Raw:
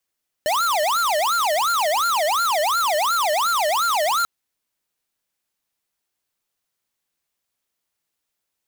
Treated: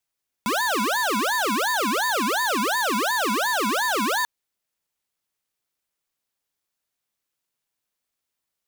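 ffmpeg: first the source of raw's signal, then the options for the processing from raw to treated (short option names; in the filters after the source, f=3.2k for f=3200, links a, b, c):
-f lavfi -i "aevalsrc='0.1*(2*lt(mod((997*t-403/(2*PI*2.8)*sin(2*PI*2.8*t)),1),0.5)-1)':d=3.79:s=44100"
-af "aeval=exprs='val(0)*sin(2*PI*390*n/s)':c=same"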